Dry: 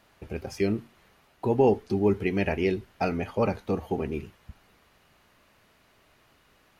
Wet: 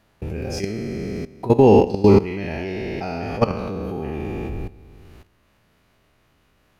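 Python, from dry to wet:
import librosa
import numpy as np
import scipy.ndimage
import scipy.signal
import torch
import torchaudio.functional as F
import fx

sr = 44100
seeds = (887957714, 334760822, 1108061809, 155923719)

y = fx.spec_trails(x, sr, decay_s=1.9)
y = fx.low_shelf(y, sr, hz=280.0, db=8.5)
y = fx.level_steps(y, sr, step_db=17)
y = fx.dynamic_eq(y, sr, hz=4800.0, q=0.76, threshold_db=-51.0, ratio=4.0, max_db=6)
y = F.gain(torch.from_numpy(y), 6.5).numpy()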